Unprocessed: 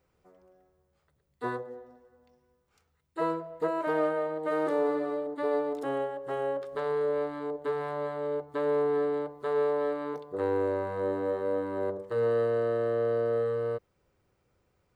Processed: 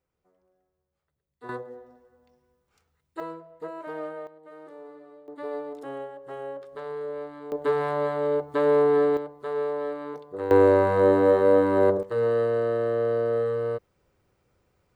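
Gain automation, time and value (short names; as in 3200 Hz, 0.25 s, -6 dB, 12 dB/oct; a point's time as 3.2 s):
-10 dB
from 1.49 s +0.5 dB
from 3.2 s -7.5 dB
from 4.27 s -17.5 dB
from 5.28 s -5 dB
from 7.52 s +7 dB
from 9.17 s -1 dB
from 10.51 s +11.5 dB
from 12.03 s +3 dB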